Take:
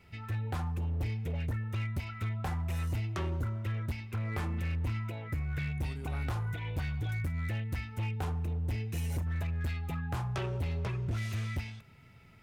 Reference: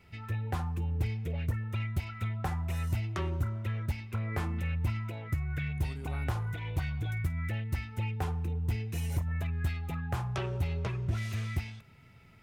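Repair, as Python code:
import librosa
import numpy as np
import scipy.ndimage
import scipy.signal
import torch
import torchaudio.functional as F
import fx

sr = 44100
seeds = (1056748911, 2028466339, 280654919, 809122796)

y = fx.fix_declip(x, sr, threshold_db=-29.0)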